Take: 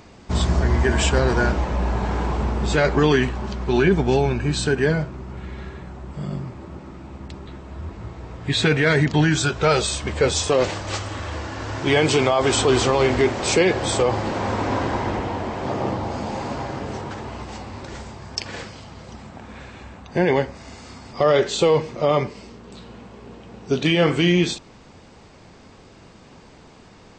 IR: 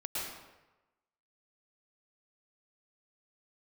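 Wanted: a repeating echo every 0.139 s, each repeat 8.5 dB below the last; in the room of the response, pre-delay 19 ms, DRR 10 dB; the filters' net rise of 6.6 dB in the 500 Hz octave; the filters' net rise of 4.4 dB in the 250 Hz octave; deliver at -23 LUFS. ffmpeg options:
-filter_complex "[0:a]equalizer=f=250:t=o:g=3.5,equalizer=f=500:t=o:g=7,aecho=1:1:139|278|417|556:0.376|0.143|0.0543|0.0206,asplit=2[a][b];[1:a]atrim=start_sample=2205,adelay=19[c];[b][c]afir=irnorm=-1:irlink=0,volume=-13.5dB[d];[a][d]amix=inputs=2:normalize=0,volume=-7.5dB"

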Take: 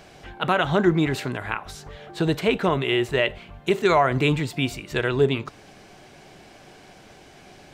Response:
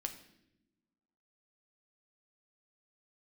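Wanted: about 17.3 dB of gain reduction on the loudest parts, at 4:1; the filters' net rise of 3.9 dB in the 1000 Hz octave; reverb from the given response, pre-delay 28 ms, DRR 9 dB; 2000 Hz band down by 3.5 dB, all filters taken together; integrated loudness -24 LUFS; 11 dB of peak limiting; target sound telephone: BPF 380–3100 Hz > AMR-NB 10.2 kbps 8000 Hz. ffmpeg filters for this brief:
-filter_complex "[0:a]equalizer=f=1k:t=o:g=7,equalizer=f=2k:t=o:g=-6.5,acompressor=threshold=-32dB:ratio=4,alimiter=level_in=3dB:limit=-24dB:level=0:latency=1,volume=-3dB,asplit=2[a][b];[1:a]atrim=start_sample=2205,adelay=28[c];[b][c]afir=irnorm=-1:irlink=0,volume=-8dB[d];[a][d]amix=inputs=2:normalize=0,highpass=380,lowpass=3.1k,volume=18.5dB" -ar 8000 -c:a libopencore_amrnb -b:a 10200

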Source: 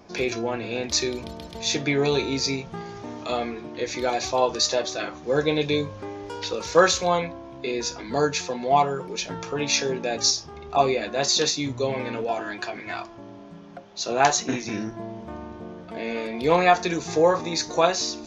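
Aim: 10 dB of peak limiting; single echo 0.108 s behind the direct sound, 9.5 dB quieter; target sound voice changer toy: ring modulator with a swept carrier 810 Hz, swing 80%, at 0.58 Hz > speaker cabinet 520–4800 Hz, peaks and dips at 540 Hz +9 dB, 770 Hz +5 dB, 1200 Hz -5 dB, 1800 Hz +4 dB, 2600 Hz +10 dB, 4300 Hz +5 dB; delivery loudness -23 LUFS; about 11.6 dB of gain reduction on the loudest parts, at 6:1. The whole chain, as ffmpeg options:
-af "acompressor=threshold=-25dB:ratio=6,alimiter=limit=-24dB:level=0:latency=1,aecho=1:1:108:0.335,aeval=exprs='val(0)*sin(2*PI*810*n/s+810*0.8/0.58*sin(2*PI*0.58*n/s))':c=same,highpass=520,equalizer=f=540:t=q:w=4:g=9,equalizer=f=770:t=q:w=4:g=5,equalizer=f=1.2k:t=q:w=4:g=-5,equalizer=f=1.8k:t=q:w=4:g=4,equalizer=f=2.6k:t=q:w=4:g=10,equalizer=f=4.3k:t=q:w=4:g=5,lowpass=f=4.8k:w=0.5412,lowpass=f=4.8k:w=1.3066,volume=10.5dB"

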